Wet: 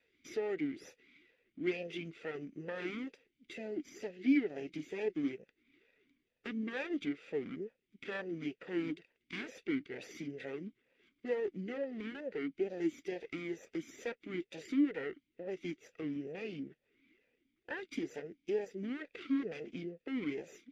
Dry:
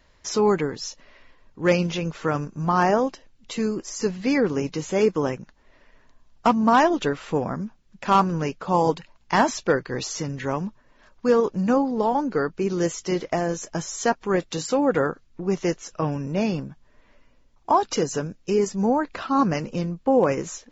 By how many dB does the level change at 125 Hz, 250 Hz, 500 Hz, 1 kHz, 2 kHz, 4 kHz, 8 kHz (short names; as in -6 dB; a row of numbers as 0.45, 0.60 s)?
-22.5 dB, -12.5 dB, -16.5 dB, -31.0 dB, -13.0 dB, -16.5 dB, n/a